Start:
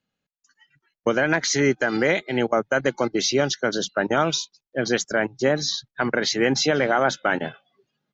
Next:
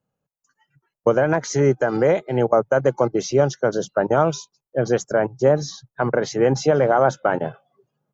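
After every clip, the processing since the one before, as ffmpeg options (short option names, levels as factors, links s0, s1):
-af "equalizer=f=125:t=o:w=1:g=9,equalizer=f=250:t=o:w=1:g=-4,equalizer=f=500:t=o:w=1:g=6,equalizer=f=1000:t=o:w=1:g=5,equalizer=f=2000:t=o:w=1:g=-8,equalizer=f=4000:t=o:w=1:g=-12"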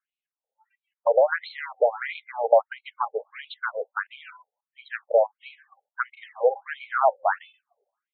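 -filter_complex "[0:a]acrossover=split=150|440|1100[s0][s1][s2][s3];[s1]asoftclip=type=tanh:threshold=0.0398[s4];[s0][s4][s2][s3]amix=inputs=4:normalize=0,afftfilt=real='re*between(b*sr/1024,600*pow(3100/600,0.5+0.5*sin(2*PI*1.5*pts/sr))/1.41,600*pow(3100/600,0.5+0.5*sin(2*PI*1.5*pts/sr))*1.41)':imag='im*between(b*sr/1024,600*pow(3100/600,0.5+0.5*sin(2*PI*1.5*pts/sr))/1.41,600*pow(3100/600,0.5+0.5*sin(2*PI*1.5*pts/sr))*1.41)':win_size=1024:overlap=0.75,volume=1.33"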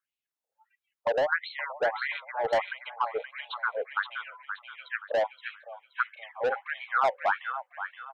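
-filter_complex "[0:a]acrossover=split=1100[s0][s1];[s0]asoftclip=type=tanh:threshold=0.0631[s2];[s1]aecho=1:1:524|1048|1572|2096:0.562|0.186|0.0612|0.0202[s3];[s2][s3]amix=inputs=2:normalize=0"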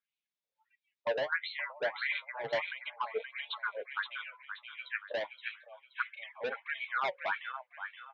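-af "flanger=delay=4.3:depth=5.8:regen=44:speed=0.3:shape=sinusoidal,highpass=110,equalizer=f=150:t=q:w=4:g=5,equalizer=f=510:t=q:w=4:g=-4,equalizer=f=770:t=q:w=4:g=-10,equalizer=f=1300:t=q:w=4:g=-5,equalizer=f=2300:t=q:w=4:g=6,equalizer=f=3600:t=q:w=4:g=6,lowpass=f=5600:w=0.5412,lowpass=f=5600:w=1.3066"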